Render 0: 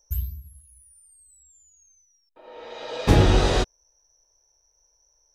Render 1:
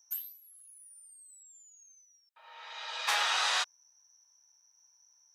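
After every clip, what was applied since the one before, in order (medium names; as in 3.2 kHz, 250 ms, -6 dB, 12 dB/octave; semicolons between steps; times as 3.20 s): inverse Chebyshev high-pass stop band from 220 Hz, stop band 70 dB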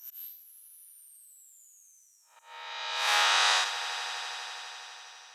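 spectral blur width 162 ms; slow attack 146 ms; echo with a slow build-up 82 ms, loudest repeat 5, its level -18 dB; trim +6.5 dB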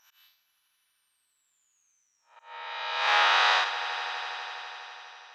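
distance through air 240 m; trim +5.5 dB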